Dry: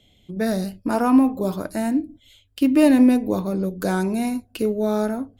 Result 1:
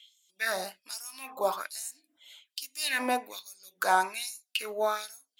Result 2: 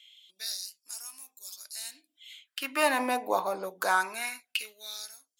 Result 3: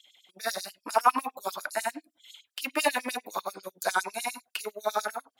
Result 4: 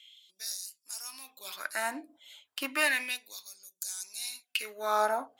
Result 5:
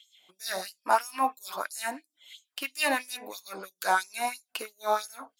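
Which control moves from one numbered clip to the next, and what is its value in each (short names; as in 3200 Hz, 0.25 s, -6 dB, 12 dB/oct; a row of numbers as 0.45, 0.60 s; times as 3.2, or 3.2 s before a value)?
LFO high-pass, rate: 1.2, 0.22, 10, 0.33, 3 Hz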